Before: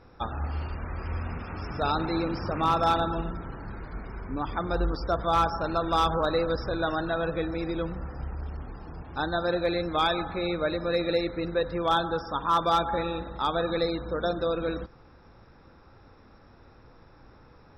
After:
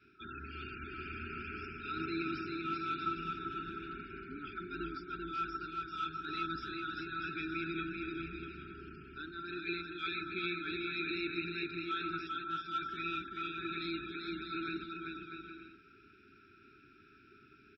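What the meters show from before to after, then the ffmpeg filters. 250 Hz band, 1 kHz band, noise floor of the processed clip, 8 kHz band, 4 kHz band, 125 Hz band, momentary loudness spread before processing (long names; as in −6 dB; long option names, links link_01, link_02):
−9.0 dB, −12.5 dB, −62 dBFS, can't be measured, −9.5 dB, −15.5 dB, 13 LU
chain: -filter_complex "[0:a]adynamicequalizer=threshold=0.00891:dfrequency=430:dqfactor=1.5:tfrequency=430:tqfactor=1.5:attack=5:release=100:ratio=0.375:range=2.5:mode=cutabove:tftype=bell,asplit=3[link_01][link_02][link_03];[link_01]bandpass=frequency=730:width_type=q:width=8,volume=0dB[link_04];[link_02]bandpass=frequency=1090:width_type=q:width=8,volume=-6dB[link_05];[link_03]bandpass=frequency=2440:width_type=q:width=8,volume=-9dB[link_06];[link_04][link_05][link_06]amix=inputs=3:normalize=0,areverse,acompressor=threshold=-41dB:ratio=20,areverse,afftfilt=real='re*(1-between(b*sr/4096,420,1300))':imag='im*(1-between(b*sr/4096,420,1300))':win_size=4096:overlap=0.75,aecho=1:1:390|643.5|808.3|915.4|985:0.631|0.398|0.251|0.158|0.1,volume=15dB"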